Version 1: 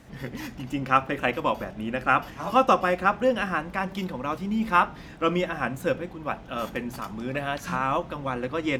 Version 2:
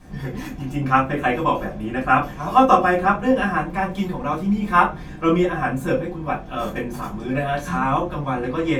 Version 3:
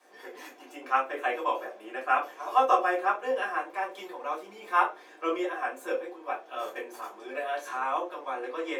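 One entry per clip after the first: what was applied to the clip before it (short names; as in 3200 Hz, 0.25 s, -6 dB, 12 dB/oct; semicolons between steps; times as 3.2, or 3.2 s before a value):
dynamic EQ 4900 Hz, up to -6 dB, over -60 dBFS, Q 5.5; reverb RT60 0.20 s, pre-delay 3 ms, DRR -6.5 dB; gain -7.5 dB
steep high-pass 370 Hz 36 dB/oct; gain -8 dB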